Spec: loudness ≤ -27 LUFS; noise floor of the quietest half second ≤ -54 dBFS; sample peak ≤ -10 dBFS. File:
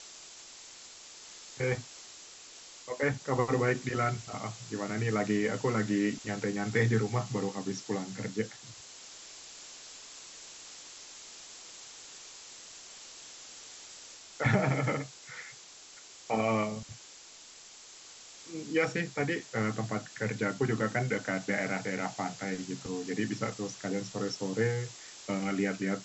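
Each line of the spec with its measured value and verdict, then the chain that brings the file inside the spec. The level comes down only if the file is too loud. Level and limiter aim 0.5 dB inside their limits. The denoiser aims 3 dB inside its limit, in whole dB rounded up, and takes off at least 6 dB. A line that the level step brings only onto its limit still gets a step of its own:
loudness -32.5 LUFS: OK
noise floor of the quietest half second -52 dBFS: fail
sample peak -14.5 dBFS: OK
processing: denoiser 6 dB, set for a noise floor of -52 dBFS

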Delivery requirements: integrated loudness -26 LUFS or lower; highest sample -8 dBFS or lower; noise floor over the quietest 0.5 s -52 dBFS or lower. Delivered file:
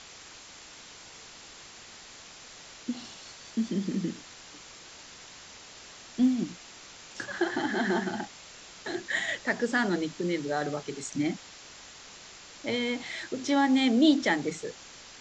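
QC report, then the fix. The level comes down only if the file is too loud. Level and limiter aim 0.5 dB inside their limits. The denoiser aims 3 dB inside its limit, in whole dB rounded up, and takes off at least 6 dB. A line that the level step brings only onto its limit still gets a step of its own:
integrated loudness -29.5 LUFS: OK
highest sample -11.0 dBFS: OK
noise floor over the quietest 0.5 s -49 dBFS: fail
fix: denoiser 6 dB, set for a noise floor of -49 dBFS

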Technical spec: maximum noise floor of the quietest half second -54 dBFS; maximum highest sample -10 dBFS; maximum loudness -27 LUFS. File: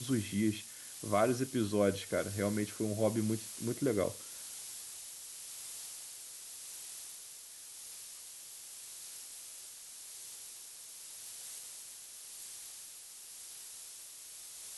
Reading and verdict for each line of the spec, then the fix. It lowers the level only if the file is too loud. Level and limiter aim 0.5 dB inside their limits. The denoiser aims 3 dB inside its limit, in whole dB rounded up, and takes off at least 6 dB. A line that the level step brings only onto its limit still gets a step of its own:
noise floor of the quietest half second -51 dBFS: fail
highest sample -17.5 dBFS: OK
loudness -38.5 LUFS: OK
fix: denoiser 6 dB, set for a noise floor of -51 dBFS

